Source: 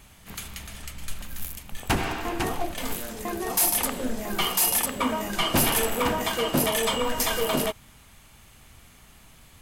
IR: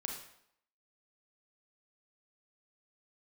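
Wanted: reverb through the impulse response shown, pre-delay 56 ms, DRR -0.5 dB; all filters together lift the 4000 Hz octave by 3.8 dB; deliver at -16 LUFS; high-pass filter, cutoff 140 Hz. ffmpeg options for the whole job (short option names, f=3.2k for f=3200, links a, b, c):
-filter_complex "[0:a]highpass=140,equalizer=f=4k:t=o:g=5.5,asplit=2[a][b];[1:a]atrim=start_sample=2205,adelay=56[c];[b][c]afir=irnorm=-1:irlink=0,volume=0.5dB[d];[a][d]amix=inputs=2:normalize=0,volume=5dB"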